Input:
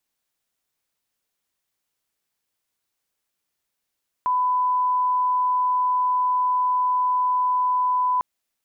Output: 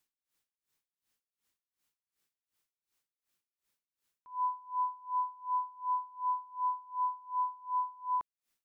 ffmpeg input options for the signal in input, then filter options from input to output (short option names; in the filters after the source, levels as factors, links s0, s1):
-f lavfi -i "sine=f=1000:d=3.95:r=44100,volume=0.06dB"
-af "equalizer=f=670:w=2.3:g=-5.5,alimiter=level_in=1.26:limit=0.0631:level=0:latency=1,volume=0.794,aeval=exprs='val(0)*pow(10,-25*(0.5-0.5*cos(2*PI*2.7*n/s))/20)':c=same"